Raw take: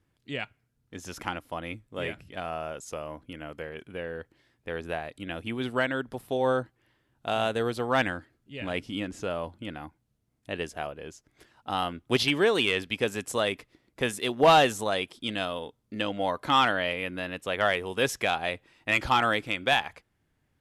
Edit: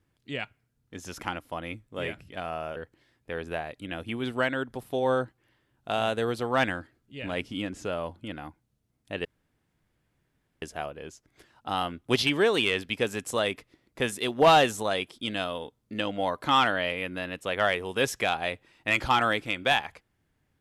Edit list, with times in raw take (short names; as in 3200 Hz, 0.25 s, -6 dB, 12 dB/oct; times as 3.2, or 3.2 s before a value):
2.76–4.14 cut
10.63 insert room tone 1.37 s